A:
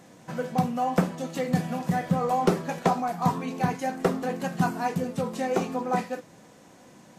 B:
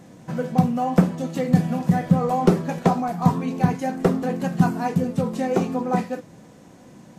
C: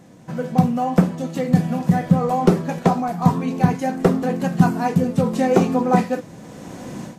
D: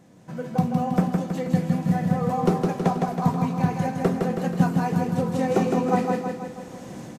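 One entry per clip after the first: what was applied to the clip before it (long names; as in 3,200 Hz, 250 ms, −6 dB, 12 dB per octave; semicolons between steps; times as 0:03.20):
low-shelf EQ 360 Hz +10 dB
automatic gain control gain up to 16.5 dB; level −1 dB
repeating echo 161 ms, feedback 55%, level −4 dB; level −6.5 dB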